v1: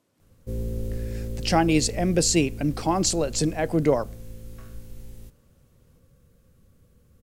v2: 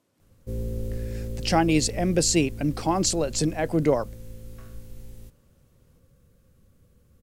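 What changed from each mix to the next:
reverb: off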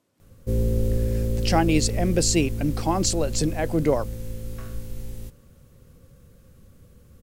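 background +8.0 dB

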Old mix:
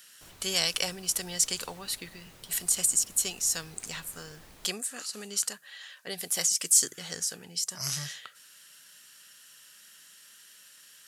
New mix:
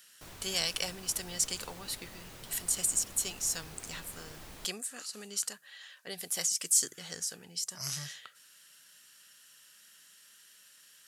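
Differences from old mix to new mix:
speech −4.5 dB
background +4.5 dB

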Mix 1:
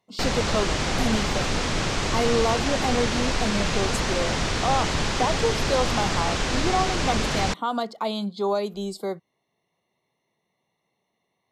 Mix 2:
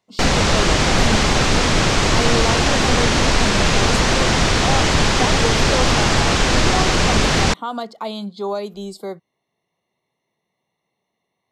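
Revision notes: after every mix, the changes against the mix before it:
background +9.0 dB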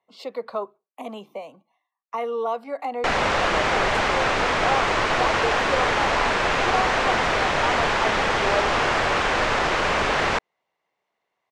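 background: entry +2.85 s
master: add three-way crossover with the lows and the highs turned down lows −15 dB, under 430 Hz, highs −15 dB, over 2,700 Hz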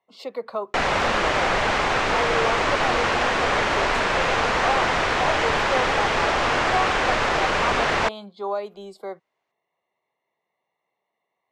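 background: entry −2.30 s

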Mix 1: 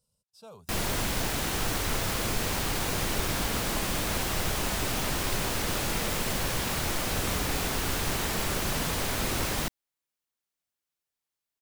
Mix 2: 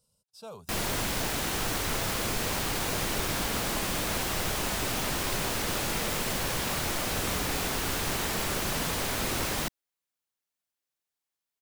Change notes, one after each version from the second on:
speech +5.0 dB
master: add low-shelf EQ 130 Hz −4.5 dB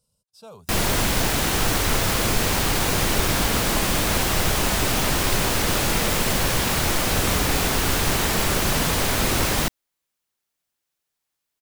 background +8.0 dB
master: add low-shelf EQ 130 Hz +4.5 dB

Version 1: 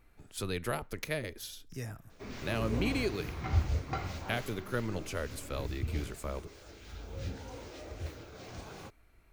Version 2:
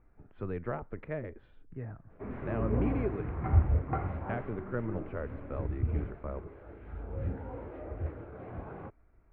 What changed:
background +4.5 dB
master: add Bessel low-pass filter 1,200 Hz, order 6

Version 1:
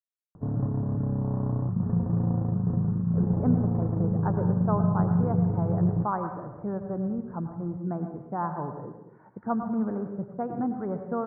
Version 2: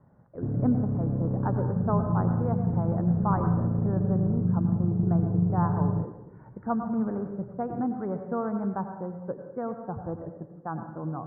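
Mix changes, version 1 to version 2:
speech: entry −2.80 s
background: add parametric band 990 Hz −9 dB 1.1 octaves

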